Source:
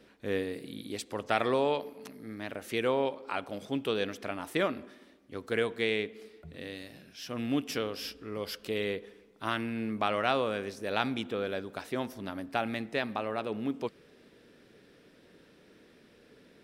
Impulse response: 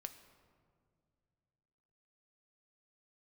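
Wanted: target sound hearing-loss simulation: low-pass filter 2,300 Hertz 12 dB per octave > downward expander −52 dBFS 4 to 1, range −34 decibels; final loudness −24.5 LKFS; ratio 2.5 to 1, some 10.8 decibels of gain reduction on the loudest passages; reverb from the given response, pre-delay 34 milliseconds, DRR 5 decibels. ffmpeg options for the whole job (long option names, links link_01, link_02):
-filter_complex "[0:a]acompressor=threshold=-40dB:ratio=2.5,asplit=2[link_01][link_02];[1:a]atrim=start_sample=2205,adelay=34[link_03];[link_02][link_03]afir=irnorm=-1:irlink=0,volume=-0.5dB[link_04];[link_01][link_04]amix=inputs=2:normalize=0,lowpass=2300,agate=range=-34dB:threshold=-52dB:ratio=4,volume=17dB"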